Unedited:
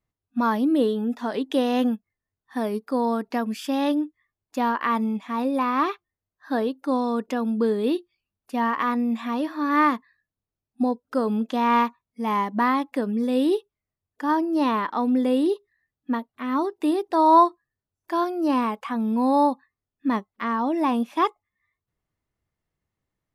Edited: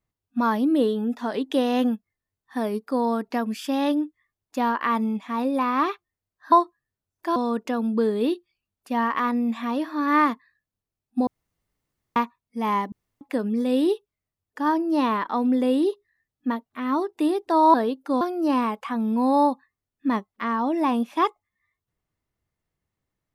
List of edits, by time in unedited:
0:06.52–0:06.99: swap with 0:17.37–0:18.21
0:10.90–0:11.79: fill with room tone
0:12.55–0:12.84: fill with room tone

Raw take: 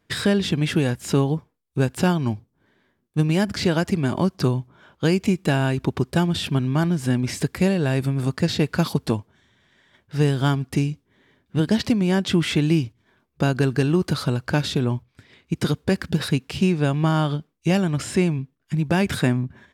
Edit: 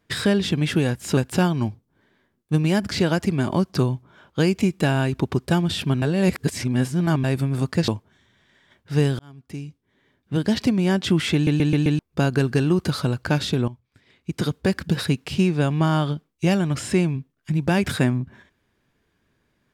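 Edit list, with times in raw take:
0:01.17–0:01.82: remove
0:06.67–0:07.89: reverse
0:08.53–0:09.11: remove
0:10.42–0:11.90: fade in
0:12.57: stutter in place 0.13 s, 5 plays
0:14.91–0:15.92: fade in linear, from −15 dB

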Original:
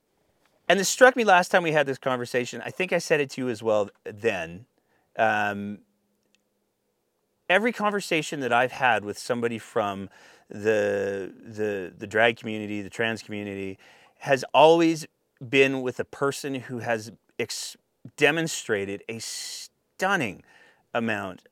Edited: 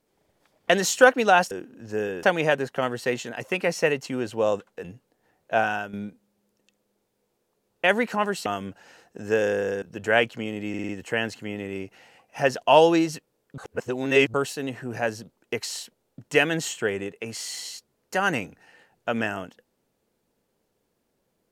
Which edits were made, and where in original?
0:04.12–0:04.50: remove
0:05.25–0:05.59: fade out, to −10 dB
0:08.12–0:09.81: remove
0:11.17–0:11.89: move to 0:01.51
0:12.76: stutter 0.05 s, 5 plays
0:15.45–0:16.21: reverse

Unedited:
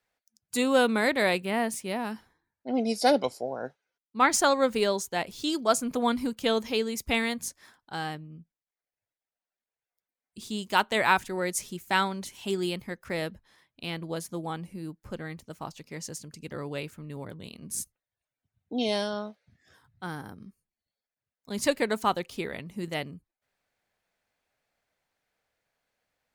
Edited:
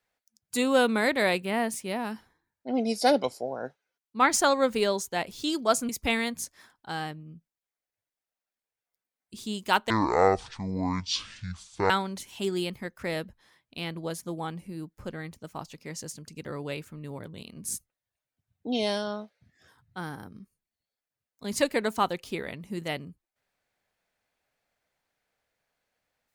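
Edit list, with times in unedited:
0:05.89–0:06.93: remove
0:10.94–0:11.96: play speed 51%

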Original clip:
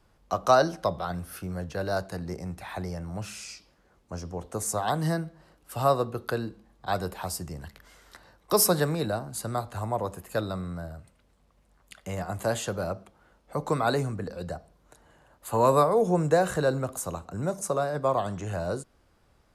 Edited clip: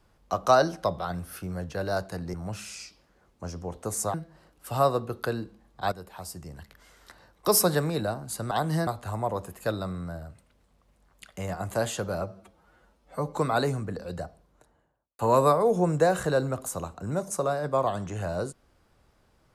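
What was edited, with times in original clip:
0:02.34–0:03.03: remove
0:04.83–0:05.19: move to 0:09.56
0:06.97–0:08.60: fade in equal-power, from −12.5 dB
0:12.91–0:13.67: time-stretch 1.5×
0:14.55–0:15.50: fade out and dull

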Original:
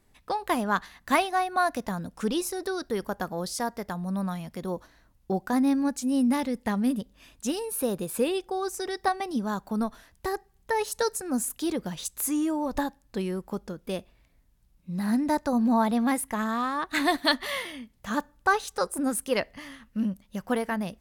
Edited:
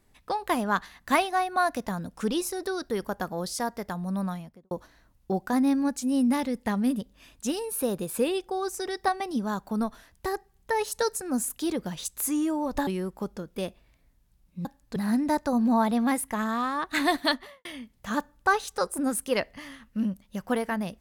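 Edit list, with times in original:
0:04.24–0:04.71: fade out and dull
0:12.87–0:13.18: move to 0:14.96
0:17.21–0:17.65: fade out and dull

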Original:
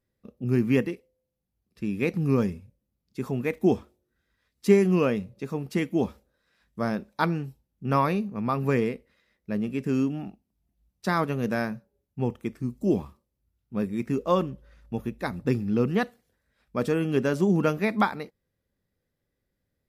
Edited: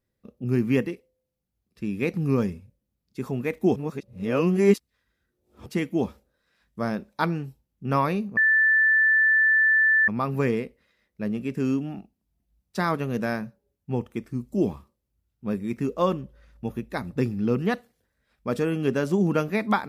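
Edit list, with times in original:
0:03.76–0:05.66: reverse
0:08.37: insert tone 1,760 Hz −16 dBFS 1.71 s

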